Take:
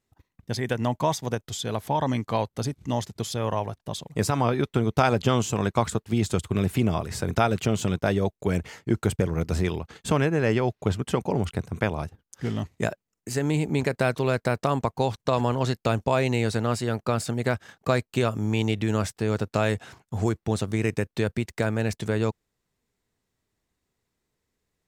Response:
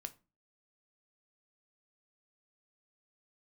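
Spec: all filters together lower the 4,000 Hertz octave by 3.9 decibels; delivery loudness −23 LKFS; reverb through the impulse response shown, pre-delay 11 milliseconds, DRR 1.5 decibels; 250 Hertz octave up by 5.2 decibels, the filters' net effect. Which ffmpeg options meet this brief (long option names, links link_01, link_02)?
-filter_complex "[0:a]equalizer=frequency=250:width_type=o:gain=6.5,equalizer=frequency=4000:width_type=o:gain=-5,asplit=2[link_01][link_02];[1:a]atrim=start_sample=2205,adelay=11[link_03];[link_02][link_03]afir=irnorm=-1:irlink=0,volume=2.5dB[link_04];[link_01][link_04]amix=inputs=2:normalize=0,volume=-1dB"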